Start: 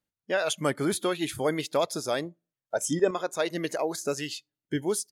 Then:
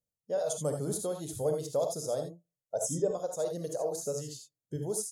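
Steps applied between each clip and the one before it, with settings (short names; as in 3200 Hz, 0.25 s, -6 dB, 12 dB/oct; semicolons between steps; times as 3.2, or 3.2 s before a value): EQ curve 160 Hz 0 dB, 330 Hz -12 dB, 490 Hz +2 dB, 2400 Hz -29 dB, 3400 Hz -16 dB, 6600 Hz 0 dB, 12000 Hz -2 dB; non-linear reverb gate 0.1 s rising, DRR 4 dB; gain -2.5 dB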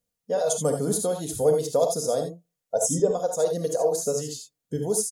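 comb 4.2 ms, depth 45%; gain +8 dB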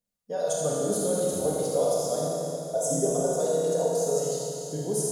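flange 0.4 Hz, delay 4.6 ms, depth 7.1 ms, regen +47%; Schroeder reverb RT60 3.2 s, combs from 26 ms, DRR -3.5 dB; gain -2.5 dB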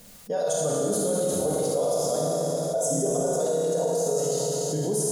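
fast leveller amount 70%; gain -2 dB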